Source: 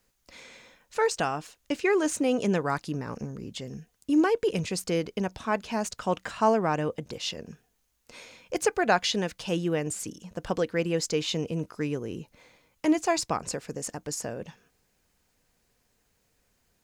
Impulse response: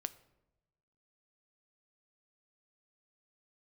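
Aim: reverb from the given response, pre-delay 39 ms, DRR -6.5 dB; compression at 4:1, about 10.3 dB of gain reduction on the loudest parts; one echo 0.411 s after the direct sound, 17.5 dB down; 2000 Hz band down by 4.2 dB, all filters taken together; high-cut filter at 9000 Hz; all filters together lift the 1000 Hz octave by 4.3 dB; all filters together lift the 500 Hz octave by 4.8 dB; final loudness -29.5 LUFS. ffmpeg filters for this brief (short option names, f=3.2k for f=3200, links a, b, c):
-filter_complex "[0:a]lowpass=9k,equalizer=f=500:t=o:g=5,equalizer=f=1k:t=o:g=5.5,equalizer=f=2k:t=o:g=-8.5,acompressor=threshold=-26dB:ratio=4,aecho=1:1:411:0.133,asplit=2[a][b];[1:a]atrim=start_sample=2205,adelay=39[c];[b][c]afir=irnorm=-1:irlink=0,volume=8dB[d];[a][d]amix=inputs=2:normalize=0,volume=-5dB"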